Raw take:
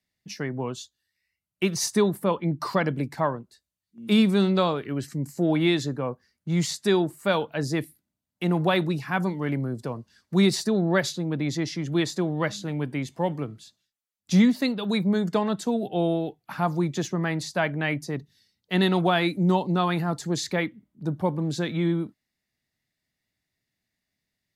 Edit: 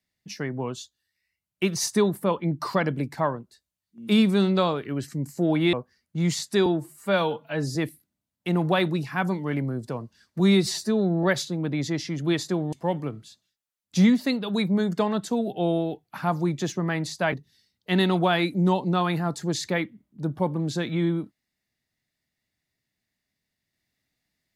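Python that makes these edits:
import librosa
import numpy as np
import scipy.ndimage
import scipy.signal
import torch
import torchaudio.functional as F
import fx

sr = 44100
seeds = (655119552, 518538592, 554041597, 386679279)

y = fx.edit(x, sr, fx.cut(start_s=5.73, length_s=0.32),
    fx.stretch_span(start_s=6.98, length_s=0.73, factor=1.5),
    fx.stretch_span(start_s=10.35, length_s=0.56, factor=1.5),
    fx.cut(start_s=12.4, length_s=0.68),
    fx.cut(start_s=17.68, length_s=0.47), tone=tone)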